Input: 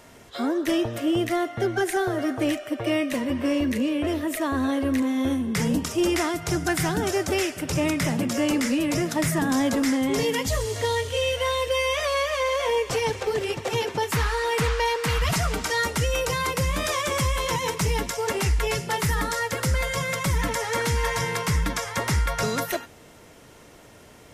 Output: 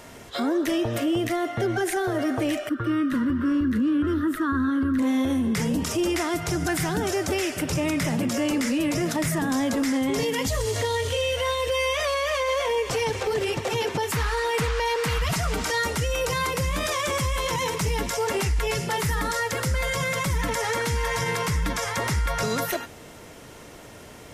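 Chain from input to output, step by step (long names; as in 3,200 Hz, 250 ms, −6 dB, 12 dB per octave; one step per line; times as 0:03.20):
0:02.69–0:04.99: drawn EQ curve 320 Hz 0 dB, 700 Hz −23 dB, 1,400 Hz +9 dB, 2,300 Hz −18 dB, 3,500 Hz −9 dB, 6,600 Hz −17 dB, 14,000 Hz −13 dB
brickwall limiter −22.5 dBFS, peak gain reduction 8 dB
level +5 dB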